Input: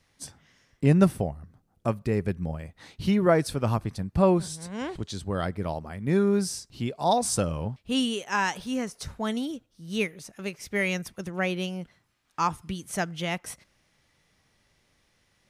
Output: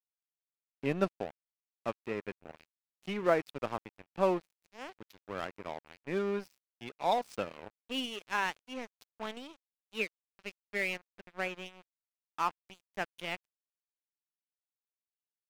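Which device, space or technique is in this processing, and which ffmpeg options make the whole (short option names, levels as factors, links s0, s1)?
pocket radio on a weak battery: -filter_complex "[0:a]asettb=1/sr,asplit=3[s0][s1][s2];[s0]atrim=end=10.964[s3];[s1]atrim=start=10.96:end=11.66,asetpts=PTS-STARTPTS,afade=t=in:d=0.004:c=qsin,afade=t=out:st=0.696:d=0.004:c=qsin,lowpass=2600[s4];[s2]atrim=start=11.656[s5];[s3][s4]acrossfade=d=0.004:c1=hsin:c2=qsin[s6];[s6][s5]acrossfade=d=0.004:c1=qsin:c2=hsin,highpass=310,lowpass=4100,aeval=exprs='sgn(val(0))*max(abs(val(0))-0.0158,0)':c=same,equalizer=f=2500:t=o:w=0.36:g=4.5,volume=0.596"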